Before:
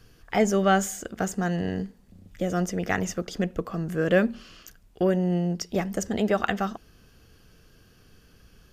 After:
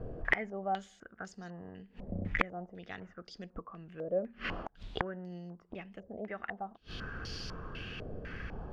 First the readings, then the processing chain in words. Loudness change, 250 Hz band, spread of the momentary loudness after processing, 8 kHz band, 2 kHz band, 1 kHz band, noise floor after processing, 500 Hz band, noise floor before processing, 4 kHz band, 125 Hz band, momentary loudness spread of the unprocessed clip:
-13.5 dB, -17.0 dB, 14 LU, under -20 dB, -5.5 dB, -10.0 dB, -65 dBFS, -13.5 dB, -57 dBFS, -8.0 dB, -14.0 dB, 10 LU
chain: flipped gate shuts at -28 dBFS, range -32 dB; wrapped overs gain 29.5 dB; stepped low-pass 4 Hz 610–4900 Hz; gain +12 dB

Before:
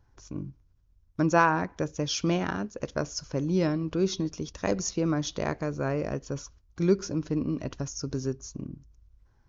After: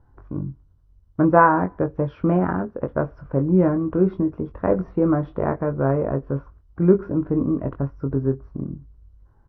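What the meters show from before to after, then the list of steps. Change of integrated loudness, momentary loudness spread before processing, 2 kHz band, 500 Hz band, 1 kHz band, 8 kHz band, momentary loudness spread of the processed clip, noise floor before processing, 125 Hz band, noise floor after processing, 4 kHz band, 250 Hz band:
+7.5 dB, 14 LU, +3.0 dB, +8.0 dB, +8.0 dB, n/a, 14 LU, -64 dBFS, +8.0 dB, -56 dBFS, under -25 dB, +8.0 dB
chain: LPF 1400 Hz 24 dB/oct; doubler 22 ms -7 dB; gain +7 dB; MP2 48 kbps 32000 Hz

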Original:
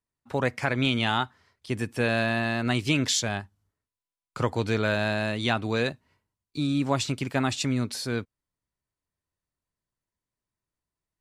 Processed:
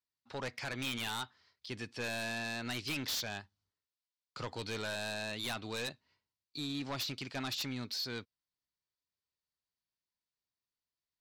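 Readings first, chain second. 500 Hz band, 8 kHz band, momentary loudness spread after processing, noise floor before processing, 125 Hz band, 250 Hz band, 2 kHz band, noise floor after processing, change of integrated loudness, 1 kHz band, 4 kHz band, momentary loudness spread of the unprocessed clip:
-14.5 dB, -10.5 dB, 9 LU, under -85 dBFS, -16.5 dB, -15.0 dB, -11.0 dB, under -85 dBFS, -11.5 dB, -13.0 dB, -7.0 dB, 8 LU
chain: band-pass 4600 Hz, Q 2.4; tilt -4.5 dB/oct; in parallel at -11 dB: sine folder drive 16 dB, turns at -26 dBFS

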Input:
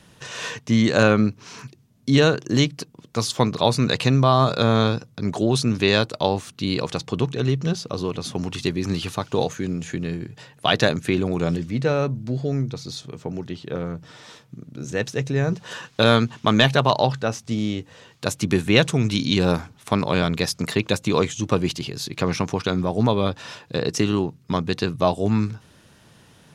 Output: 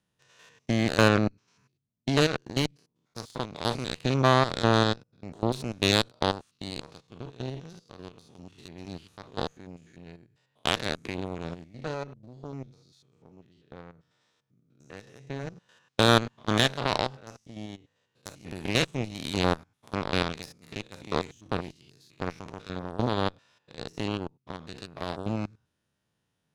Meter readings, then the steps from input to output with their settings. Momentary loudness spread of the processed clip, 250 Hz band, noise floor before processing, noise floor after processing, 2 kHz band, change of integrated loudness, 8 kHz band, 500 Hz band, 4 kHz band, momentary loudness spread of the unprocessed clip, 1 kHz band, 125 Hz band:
22 LU, -9.5 dB, -54 dBFS, -79 dBFS, -6.0 dB, -6.5 dB, -8.0 dB, -8.5 dB, -5.5 dB, 13 LU, -6.0 dB, -9.5 dB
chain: stepped spectrum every 0.1 s; added harmonics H 3 -17 dB, 5 -34 dB, 7 -21 dB, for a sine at -2.5 dBFS

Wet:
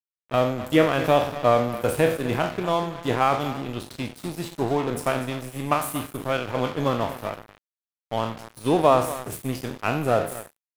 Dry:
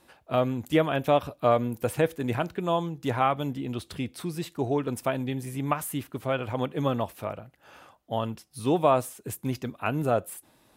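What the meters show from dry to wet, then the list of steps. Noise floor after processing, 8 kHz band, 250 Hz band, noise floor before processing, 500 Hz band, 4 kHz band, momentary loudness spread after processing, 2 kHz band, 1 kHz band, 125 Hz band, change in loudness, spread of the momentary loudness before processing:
under -85 dBFS, +3.5 dB, +2.5 dB, -63 dBFS, +4.0 dB, +5.5 dB, 12 LU, +6.0 dB, +4.5 dB, +1.5 dB, +3.5 dB, 10 LU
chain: spectral trails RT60 0.58 s; echo 0.241 s -12.5 dB; crossover distortion -35.5 dBFS; gain +3.5 dB

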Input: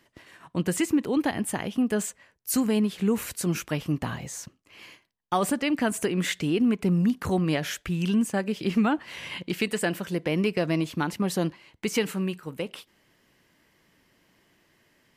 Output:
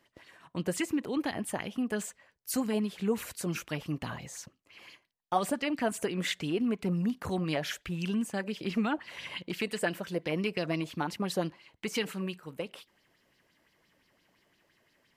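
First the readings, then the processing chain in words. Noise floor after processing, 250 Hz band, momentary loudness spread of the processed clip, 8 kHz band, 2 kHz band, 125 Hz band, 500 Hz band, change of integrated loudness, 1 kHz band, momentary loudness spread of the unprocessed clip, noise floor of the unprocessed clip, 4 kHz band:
-72 dBFS, -7.0 dB, 11 LU, -7.0 dB, -4.5 dB, -7.5 dB, -5.0 dB, -6.0 dB, -4.0 dB, 10 LU, -66 dBFS, -3.5 dB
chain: LFO bell 5.8 Hz 520–4800 Hz +10 dB; gain -7.5 dB

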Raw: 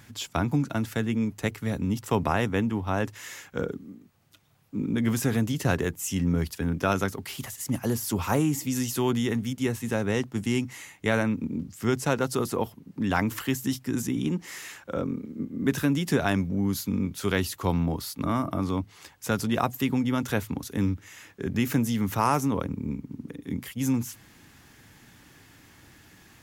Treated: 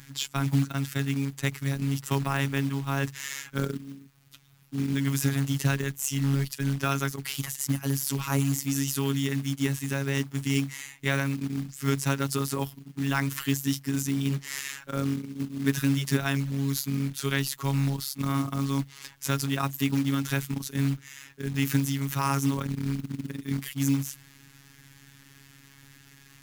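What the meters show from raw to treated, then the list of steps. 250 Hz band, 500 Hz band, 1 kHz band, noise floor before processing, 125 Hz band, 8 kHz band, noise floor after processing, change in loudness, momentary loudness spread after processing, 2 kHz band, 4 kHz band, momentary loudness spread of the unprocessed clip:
-2.0 dB, -6.0 dB, -4.0 dB, -55 dBFS, +2.5 dB, +2.5 dB, -55 dBFS, -0.5 dB, 7 LU, 0.0 dB, +2.5 dB, 10 LU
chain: bell 590 Hz -11.5 dB 1.6 oct; robotiser 138 Hz; short-mantissa float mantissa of 2-bit; in parallel at -3 dB: vocal rider 0.5 s

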